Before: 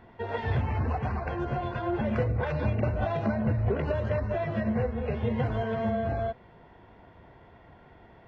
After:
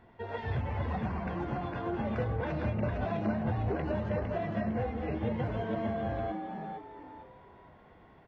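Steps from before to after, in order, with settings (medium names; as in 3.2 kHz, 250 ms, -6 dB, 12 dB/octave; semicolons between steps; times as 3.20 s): frequency-shifting echo 456 ms, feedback 35%, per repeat +100 Hz, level -5.5 dB; trim -5.5 dB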